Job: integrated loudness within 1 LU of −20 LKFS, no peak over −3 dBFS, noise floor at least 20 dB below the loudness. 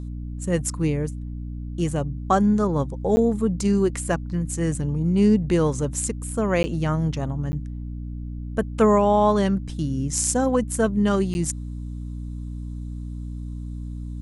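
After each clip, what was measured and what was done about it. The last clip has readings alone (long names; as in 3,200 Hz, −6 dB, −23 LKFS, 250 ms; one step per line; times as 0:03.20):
number of dropouts 4; longest dropout 10 ms; mains hum 60 Hz; hum harmonics up to 300 Hz; level of the hum −29 dBFS; integrated loudness −23.0 LKFS; sample peak −6.5 dBFS; target loudness −20.0 LKFS
→ repair the gap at 0:03.16/0:06.63/0:07.52/0:11.34, 10 ms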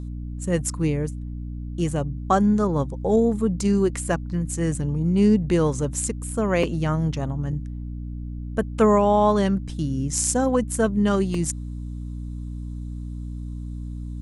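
number of dropouts 0; mains hum 60 Hz; hum harmonics up to 300 Hz; level of the hum −29 dBFS
→ mains-hum notches 60/120/180/240/300 Hz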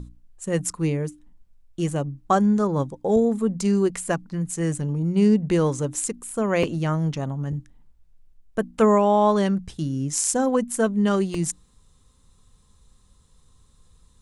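mains hum none found; integrated loudness −23.0 LKFS; sample peak −6.5 dBFS; target loudness −20.0 LKFS
→ level +3 dB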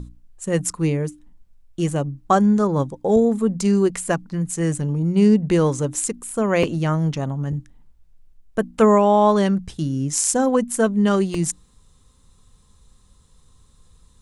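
integrated loudness −20.0 LKFS; sample peak −3.5 dBFS; background noise floor −55 dBFS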